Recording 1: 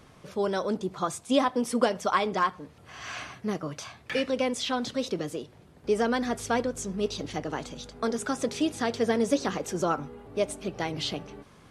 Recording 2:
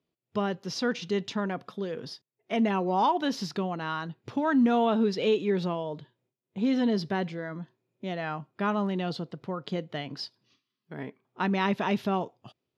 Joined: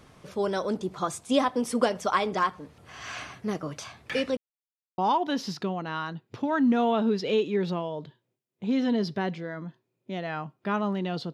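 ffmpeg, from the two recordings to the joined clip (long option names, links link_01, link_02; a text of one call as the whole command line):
ffmpeg -i cue0.wav -i cue1.wav -filter_complex "[0:a]apad=whole_dur=11.33,atrim=end=11.33,asplit=2[link_01][link_02];[link_01]atrim=end=4.37,asetpts=PTS-STARTPTS,afade=type=out:start_time=4.366:duration=0.004:curve=hsin[link_03];[link_02]atrim=start=4.37:end=4.98,asetpts=PTS-STARTPTS,volume=0[link_04];[1:a]atrim=start=2.92:end=9.27,asetpts=PTS-STARTPTS,afade=type=in:duration=0.004:curve=hsin[link_05];[link_03][link_04][link_05]concat=n=3:v=0:a=1" out.wav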